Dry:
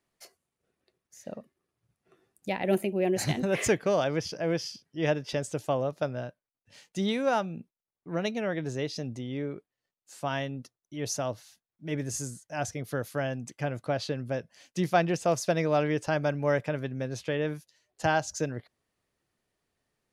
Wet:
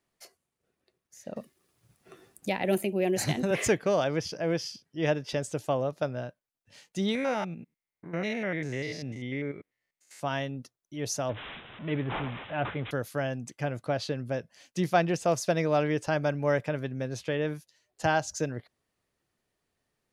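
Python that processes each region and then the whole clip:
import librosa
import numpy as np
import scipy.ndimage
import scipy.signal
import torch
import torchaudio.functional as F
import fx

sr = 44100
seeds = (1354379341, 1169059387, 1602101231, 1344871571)

y = fx.chain(x, sr, fx.high_shelf(hz=4100.0, db=5.0),
    fx.band_squash(depth_pct=40), at=(1.36, 3.51))
y = fx.chain(y, sr, fx.spec_steps(hold_ms=100),
    fx.peak_eq(hz=2100.0, db=14.5, octaves=0.36), at=(7.15, 10.2))
y = fx.chain(y, sr, fx.zero_step(step_db=-37.5),
    fx.highpass(hz=50.0, slope=12),
    fx.resample_bad(factor=6, down='none', up='filtered'), at=(11.29, 12.91))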